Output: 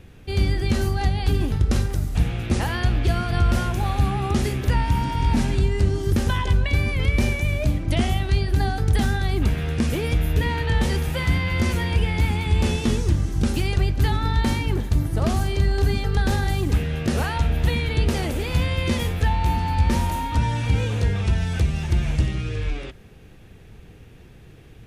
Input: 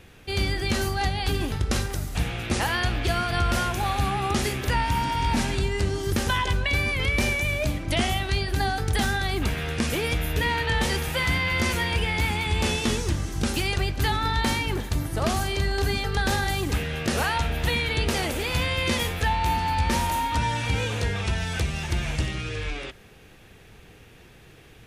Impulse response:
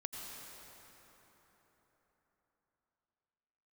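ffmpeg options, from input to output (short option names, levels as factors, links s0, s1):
-af "lowshelf=f=400:g=11,volume=0.631"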